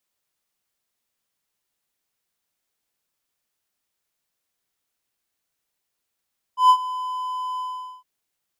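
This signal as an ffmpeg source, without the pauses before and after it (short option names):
-f lavfi -i "aevalsrc='0.473*(1-4*abs(mod(1010*t+0.25,1)-0.5))':d=1.462:s=44100,afade=t=in:d=0.127,afade=t=out:st=0.127:d=0.071:silence=0.141,afade=t=out:st=1.02:d=0.442"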